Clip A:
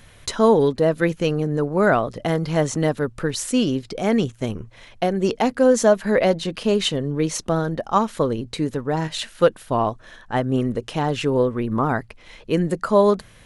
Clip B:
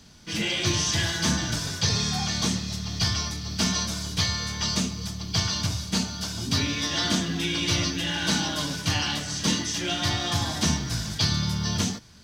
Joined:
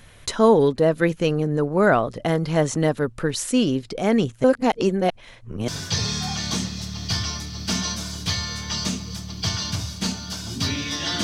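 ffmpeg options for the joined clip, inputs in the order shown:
ffmpeg -i cue0.wav -i cue1.wav -filter_complex "[0:a]apad=whole_dur=11.23,atrim=end=11.23,asplit=2[link_01][link_02];[link_01]atrim=end=4.442[link_03];[link_02]atrim=start=4.438:end=5.682,asetpts=PTS-STARTPTS,areverse[link_04];[1:a]atrim=start=1.588:end=7.14[link_05];[link_03][link_04]acrossfade=duration=0.004:curve1=hsin:curve2=hsin[link_06];[link_06][link_05]acrossfade=duration=0.004:curve1=hsin:curve2=hsin" out.wav

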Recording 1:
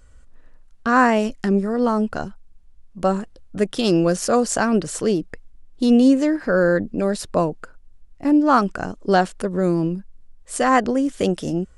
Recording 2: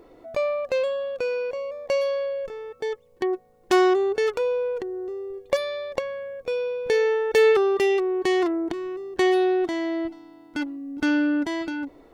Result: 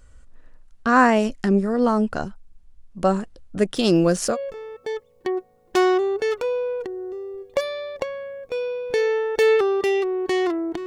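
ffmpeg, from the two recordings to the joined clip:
ffmpeg -i cue0.wav -i cue1.wav -filter_complex "[0:a]asettb=1/sr,asplit=3[link_01][link_02][link_03];[link_01]atrim=end=3.764[link_04];[link_02]atrim=start=3.76:end=4.37,asetpts=PTS-STARTPTS,afade=type=in:duration=0.004:curve=qsin,afade=type=out:start_time=0.606:duration=0.004:curve=qsin,aeval=exprs='val(0)*gte(abs(val(0)),0.00562)':channel_layout=same[link_05];[link_03]atrim=start=4.366[link_06];[link_04][link_05]acrossfade=duration=0.004:curve1=hsin:curve2=qsin[link_07];[link_07][link_06]acrossfade=duration=0.004:curve1=qsin:curve2=hsin,apad=whole_dur=10.86,atrim=end=10.86,atrim=end=4.37,asetpts=PTS-STARTPTS[link_08];[1:a]atrim=start=2.25:end=8.82,asetpts=PTS-STARTPTS[link_09];[link_08][link_09]acrossfade=duration=0.08:curve1=tri:curve2=tri" out.wav

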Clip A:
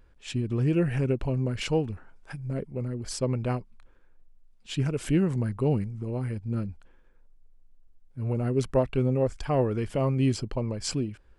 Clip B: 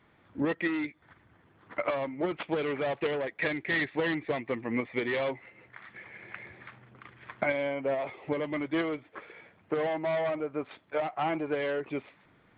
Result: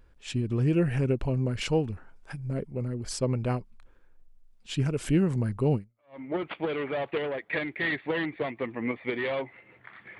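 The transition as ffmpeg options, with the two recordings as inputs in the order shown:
ffmpeg -i cue0.wav -i cue1.wav -filter_complex "[0:a]apad=whole_dur=10.19,atrim=end=10.19,atrim=end=6.21,asetpts=PTS-STARTPTS[link_01];[1:a]atrim=start=1.64:end=6.08,asetpts=PTS-STARTPTS[link_02];[link_01][link_02]acrossfade=duration=0.46:curve1=exp:curve2=exp" out.wav

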